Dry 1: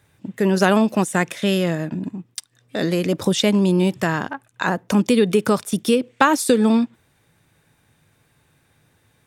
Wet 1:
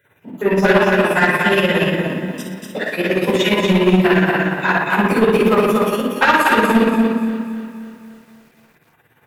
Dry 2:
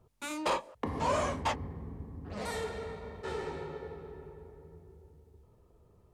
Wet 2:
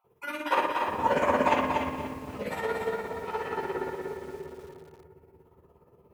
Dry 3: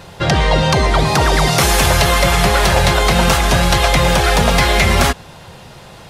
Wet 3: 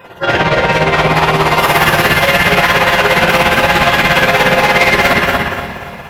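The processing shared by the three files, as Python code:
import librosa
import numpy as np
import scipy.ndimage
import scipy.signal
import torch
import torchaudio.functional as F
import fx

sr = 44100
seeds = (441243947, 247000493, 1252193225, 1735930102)

p1 = fx.spec_dropout(x, sr, seeds[0], share_pct=38)
p2 = fx.highpass(p1, sr, hz=410.0, slope=6)
p3 = fx.band_shelf(p2, sr, hz=6000.0, db=-12.0, octaves=1.7)
p4 = p3 + fx.echo_feedback(p3, sr, ms=241, feedback_pct=26, wet_db=-4.0, dry=0)
p5 = fx.room_shoebox(p4, sr, seeds[1], volume_m3=410.0, walls='mixed', distance_m=4.8)
p6 = 10.0 ** (-6.0 / 20.0) * np.tanh(p5 / 10.0 ** (-6.0 / 20.0))
p7 = fx.dynamic_eq(p6, sr, hz=2600.0, q=0.73, threshold_db=-25.0, ratio=4.0, max_db=4)
p8 = p7 * (1.0 - 0.58 / 2.0 + 0.58 / 2.0 * np.cos(2.0 * np.pi * 17.0 * (np.arange(len(p7)) / sr)))
y = fx.echo_crushed(p8, sr, ms=268, feedback_pct=55, bits=7, wet_db=-14.5)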